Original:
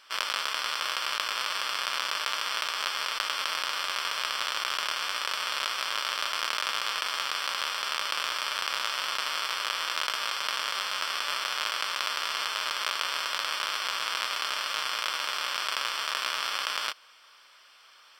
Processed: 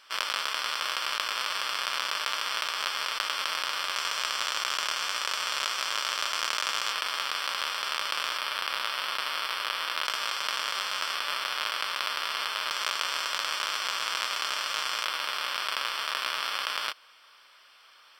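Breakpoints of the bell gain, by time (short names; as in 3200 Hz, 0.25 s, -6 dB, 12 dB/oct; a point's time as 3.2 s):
bell 6800 Hz 0.46 oct
-0.5 dB
from 3.96 s +6.5 dB
from 6.92 s -2.5 dB
from 8.37 s -10.5 dB
from 10.05 s 0 dB
from 11.15 s -7 dB
from 12.71 s +3 dB
from 15.05 s -6.5 dB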